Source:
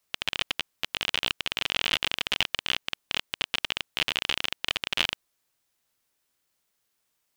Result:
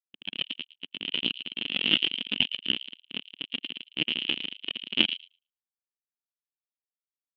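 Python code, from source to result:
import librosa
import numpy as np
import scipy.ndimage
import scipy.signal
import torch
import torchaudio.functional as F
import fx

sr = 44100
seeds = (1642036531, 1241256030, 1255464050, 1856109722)

y = fx.peak_eq(x, sr, hz=250.0, db=11.5, octaves=2.0)
y = fx.echo_wet_highpass(y, sr, ms=111, feedback_pct=40, hz=2600.0, wet_db=-4.5)
y = fx.spectral_expand(y, sr, expansion=2.5)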